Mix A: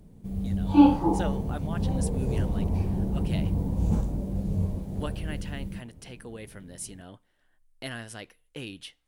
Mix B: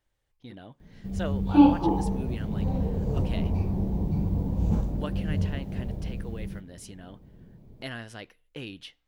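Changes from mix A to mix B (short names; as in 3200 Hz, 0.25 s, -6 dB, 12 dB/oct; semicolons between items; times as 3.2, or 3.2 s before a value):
background: entry +0.80 s; master: add bell 9400 Hz -11.5 dB 0.78 oct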